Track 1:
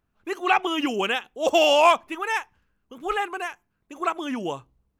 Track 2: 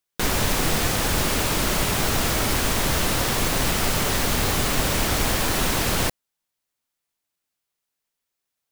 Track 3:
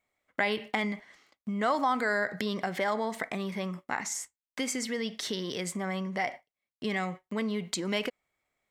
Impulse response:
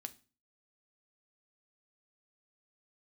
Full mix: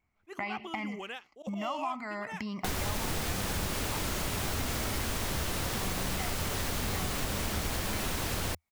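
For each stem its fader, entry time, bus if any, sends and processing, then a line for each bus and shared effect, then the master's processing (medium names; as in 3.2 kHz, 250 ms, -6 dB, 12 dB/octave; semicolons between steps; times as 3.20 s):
-7.0 dB, 0.00 s, no send, slow attack 105 ms; auto duck -9 dB, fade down 0.75 s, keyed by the third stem
-2.0 dB, 2.45 s, no send, none
+1.0 dB, 0.00 s, no send, treble shelf 4.7 kHz -9.5 dB; static phaser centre 2.4 kHz, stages 8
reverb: none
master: peaking EQ 81 Hz +6.5 dB 0.58 oct; compression 2.5:1, threshold -34 dBFS, peak gain reduction 11 dB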